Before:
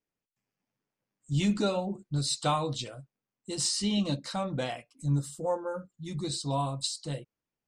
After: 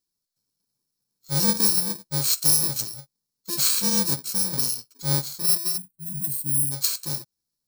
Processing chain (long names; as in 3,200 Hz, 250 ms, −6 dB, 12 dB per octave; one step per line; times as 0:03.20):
samples in bit-reversed order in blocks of 64 samples
high shelf with overshoot 3,500 Hz +7 dB, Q 3
gain on a spectral selection 0:05.78–0:06.72, 320–8,200 Hz −19 dB
level +1.5 dB